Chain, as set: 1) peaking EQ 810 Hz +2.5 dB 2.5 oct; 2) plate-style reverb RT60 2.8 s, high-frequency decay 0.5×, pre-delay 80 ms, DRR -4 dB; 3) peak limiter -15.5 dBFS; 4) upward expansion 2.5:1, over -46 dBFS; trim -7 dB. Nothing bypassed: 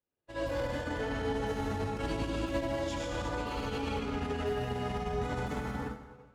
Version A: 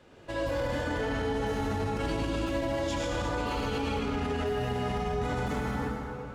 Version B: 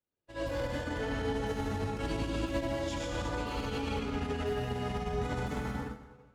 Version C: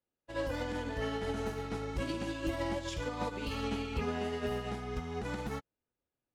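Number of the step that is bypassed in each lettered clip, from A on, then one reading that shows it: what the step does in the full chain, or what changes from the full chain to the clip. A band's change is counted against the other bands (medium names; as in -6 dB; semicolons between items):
4, crest factor change -3.5 dB; 1, 1 kHz band -1.5 dB; 2, 1 kHz band -1.5 dB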